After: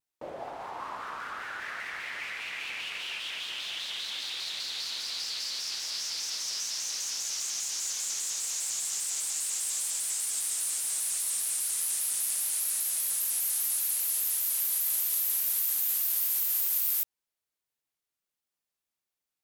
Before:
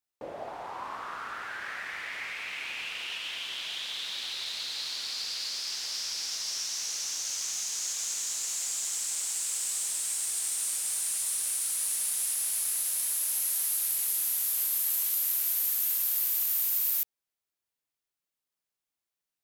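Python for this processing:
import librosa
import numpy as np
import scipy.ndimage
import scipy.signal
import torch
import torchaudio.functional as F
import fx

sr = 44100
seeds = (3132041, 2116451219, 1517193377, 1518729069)

y = fx.vibrato_shape(x, sr, shape='square', rate_hz=5.0, depth_cents=100.0)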